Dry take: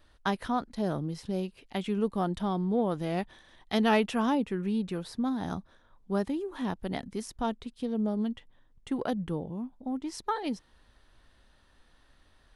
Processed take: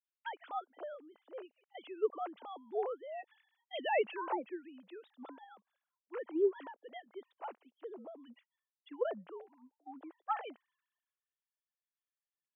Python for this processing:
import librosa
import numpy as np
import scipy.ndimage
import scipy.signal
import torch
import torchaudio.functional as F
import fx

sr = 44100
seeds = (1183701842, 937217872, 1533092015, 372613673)

y = fx.sine_speech(x, sr)
y = fx.ladder_highpass(y, sr, hz=380.0, resonance_pct=30)
y = fx.band_widen(y, sr, depth_pct=70)
y = y * librosa.db_to_amplitude(-3.0)